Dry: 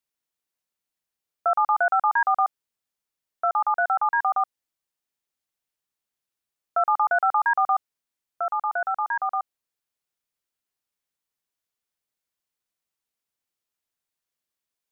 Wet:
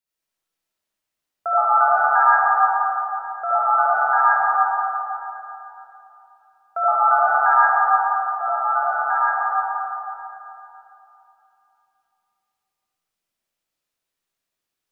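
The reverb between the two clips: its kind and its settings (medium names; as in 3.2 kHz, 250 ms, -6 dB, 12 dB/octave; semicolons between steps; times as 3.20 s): algorithmic reverb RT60 3.1 s, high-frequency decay 0.7×, pre-delay 35 ms, DRR -9.5 dB; trim -3.5 dB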